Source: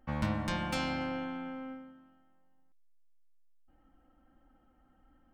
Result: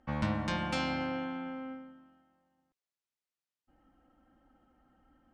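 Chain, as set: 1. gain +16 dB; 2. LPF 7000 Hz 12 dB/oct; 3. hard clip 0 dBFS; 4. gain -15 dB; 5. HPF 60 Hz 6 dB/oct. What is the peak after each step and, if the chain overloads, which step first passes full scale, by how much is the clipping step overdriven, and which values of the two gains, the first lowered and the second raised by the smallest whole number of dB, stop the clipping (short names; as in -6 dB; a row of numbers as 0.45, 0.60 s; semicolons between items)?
-2.0, -2.0, -2.0, -17.0, -18.5 dBFS; no overload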